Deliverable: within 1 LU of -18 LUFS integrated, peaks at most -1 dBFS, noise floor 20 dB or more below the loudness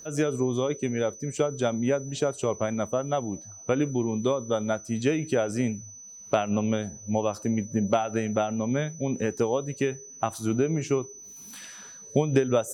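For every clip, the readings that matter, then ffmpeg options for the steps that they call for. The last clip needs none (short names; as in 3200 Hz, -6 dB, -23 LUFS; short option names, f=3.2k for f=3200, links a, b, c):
steady tone 6000 Hz; tone level -43 dBFS; loudness -27.5 LUFS; peak -8.5 dBFS; loudness target -18.0 LUFS
-> -af "bandreject=f=6k:w=30"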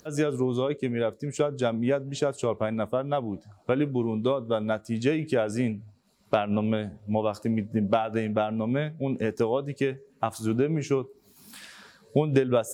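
steady tone none; loudness -27.5 LUFS; peak -9.0 dBFS; loudness target -18.0 LUFS
-> -af "volume=9.5dB,alimiter=limit=-1dB:level=0:latency=1"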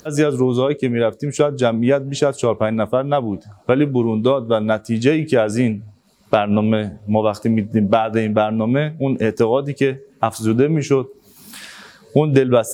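loudness -18.5 LUFS; peak -1.0 dBFS; noise floor -51 dBFS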